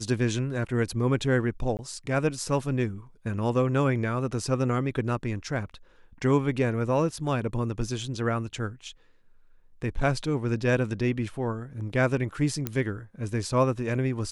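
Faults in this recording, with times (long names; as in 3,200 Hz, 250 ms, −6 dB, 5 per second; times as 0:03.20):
0:01.77–0:01.79: drop-out 19 ms
0:12.67: click −13 dBFS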